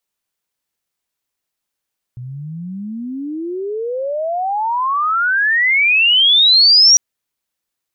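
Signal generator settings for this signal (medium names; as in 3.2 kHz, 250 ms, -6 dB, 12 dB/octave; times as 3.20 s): sweep logarithmic 120 Hz -> 5.8 kHz -26.5 dBFS -> -5 dBFS 4.80 s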